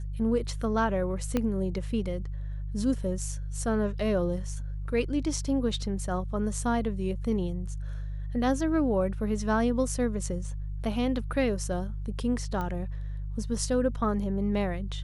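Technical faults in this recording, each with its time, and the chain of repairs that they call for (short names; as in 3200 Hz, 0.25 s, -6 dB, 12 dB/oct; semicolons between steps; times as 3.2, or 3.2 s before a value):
hum 50 Hz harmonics 3 -34 dBFS
1.37 pop -14 dBFS
12.61 pop -21 dBFS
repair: de-click; de-hum 50 Hz, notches 3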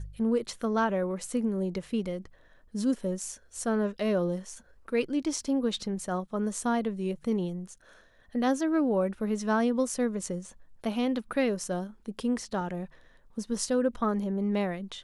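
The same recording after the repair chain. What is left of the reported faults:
1.37 pop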